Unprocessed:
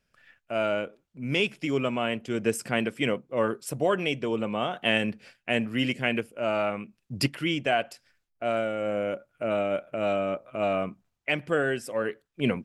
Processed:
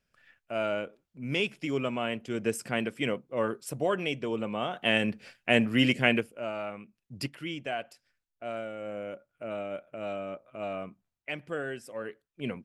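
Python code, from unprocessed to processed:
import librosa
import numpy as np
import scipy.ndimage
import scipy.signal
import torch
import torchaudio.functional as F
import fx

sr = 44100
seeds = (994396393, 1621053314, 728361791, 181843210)

y = fx.gain(x, sr, db=fx.line((4.61, -3.5), (5.53, 3.0), (6.1, 3.0), (6.53, -9.0)))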